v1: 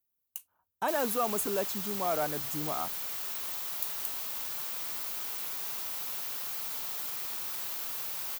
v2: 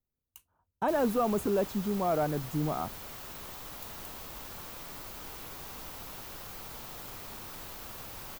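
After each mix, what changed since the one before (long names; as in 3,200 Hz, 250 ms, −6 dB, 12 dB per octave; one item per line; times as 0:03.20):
background: add high-shelf EQ 6,500 Hz +4.5 dB
master: add spectral tilt −3.5 dB per octave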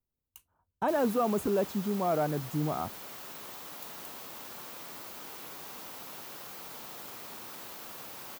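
background: add high-pass filter 190 Hz 12 dB per octave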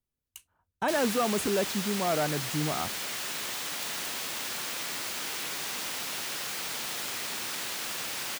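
background +5.5 dB
master: add flat-topped bell 4,000 Hz +9 dB 3 octaves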